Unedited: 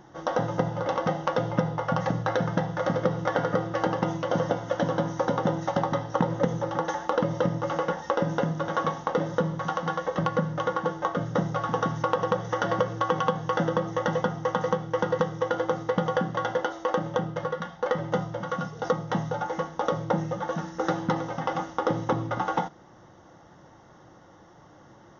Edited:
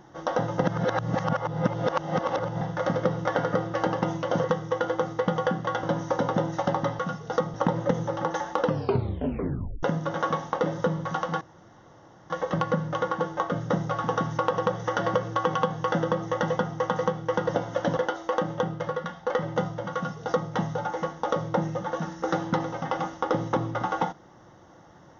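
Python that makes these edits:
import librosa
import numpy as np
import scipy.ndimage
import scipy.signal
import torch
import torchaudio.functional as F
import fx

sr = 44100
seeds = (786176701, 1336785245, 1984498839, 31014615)

y = fx.edit(x, sr, fx.reverse_span(start_s=0.64, length_s=1.97),
    fx.swap(start_s=4.44, length_s=0.48, other_s=15.14, other_length_s=1.39),
    fx.tape_stop(start_s=7.19, length_s=1.18),
    fx.insert_room_tone(at_s=9.95, length_s=0.89),
    fx.duplicate(start_s=18.51, length_s=0.55, to_s=6.08), tone=tone)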